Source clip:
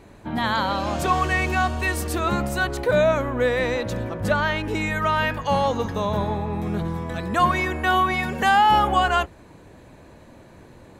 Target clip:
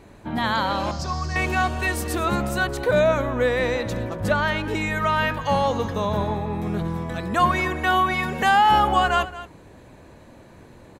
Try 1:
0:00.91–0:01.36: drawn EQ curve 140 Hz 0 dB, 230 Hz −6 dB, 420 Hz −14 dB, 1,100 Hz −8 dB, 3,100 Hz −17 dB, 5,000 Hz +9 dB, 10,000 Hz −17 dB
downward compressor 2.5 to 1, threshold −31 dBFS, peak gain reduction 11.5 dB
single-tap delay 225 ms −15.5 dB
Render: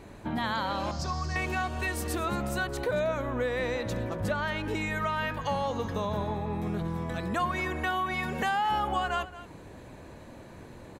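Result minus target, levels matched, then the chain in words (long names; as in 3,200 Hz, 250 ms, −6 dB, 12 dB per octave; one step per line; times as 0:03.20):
downward compressor: peak gain reduction +11.5 dB
0:00.91–0:01.36: drawn EQ curve 140 Hz 0 dB, 230 Hz −6 dB, 420 Hz −14 dB, 1,100 Hz −8 dB, 3,100 Hz −17 dB, 5,000 Hz +9 dB, 10,000 Hz −17 dB
single-tap delay 225 ms −15.5 dB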